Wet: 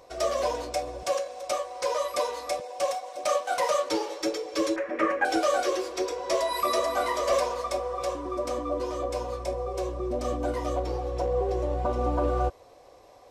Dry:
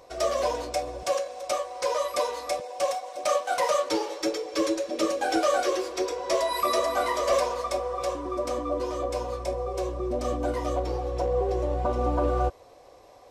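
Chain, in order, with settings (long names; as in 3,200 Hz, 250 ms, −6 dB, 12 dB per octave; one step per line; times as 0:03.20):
0:04.76–0:05.25: drawn EQ curve 660 Hz 0 dB, 1,900 Hz +14 dB, 3,900 Hz −17 dB
level −1 dB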